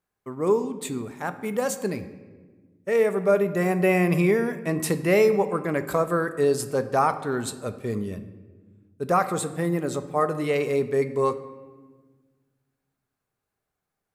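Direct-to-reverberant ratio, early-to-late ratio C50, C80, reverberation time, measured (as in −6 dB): 10.0 dB, 13.0 dB, 15.0 dB, 1.5 s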